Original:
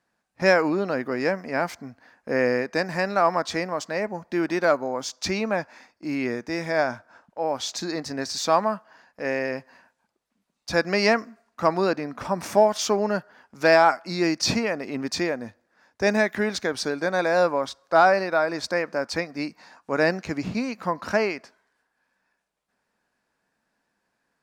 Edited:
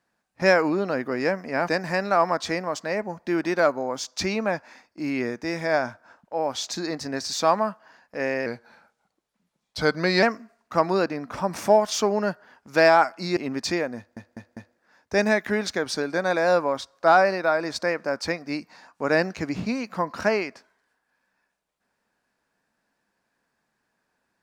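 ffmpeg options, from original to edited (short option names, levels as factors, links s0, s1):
-filter_complex "[0:a]asplit=8[s0][s1][s2][s3][s4][s5][s6][s7];[s0]atrim=end=1.682[s8];[s1]atrim=start=2.728:end=9.514[s9];[s2]atrim=start=9.51:end=11.1,asetpts=PTS-STARTPTS,asetrate=39690,aresample=44100[s10];[s3]atrim=start=11.096:end=14.242[s11];[s4]atrim=start=14.848:end=15.652[s12];[s5]atrim=start=15.448:end=15.652[s13];[s6]atrim=start=15.448:end=15.652[s14];[s7]atrim=start=15.448[s15];[s8][s9]acrossfade=d=0.004:c1=hsin:c2=hsin[s16];[s16][s10]acrossfade=d=0.004:c1=hsin:c2=hsin[s17];[s17][s11]acrossfade=d=0.004:c1=hsin:c2=hsin[s18];[s18][s12]acrossfade=d=0.004:c1=hsin:c2=hsin[s19];[s19][s13]acrossfade=d=0.004:c1=hsin:c2=hsin[s20];[s20][s14]acrossfade=d=0.004:c1=hsin:c2=hsin[s21];[s21][s15]acrossfade=d=0.004:c1=hsin:c2=hsin"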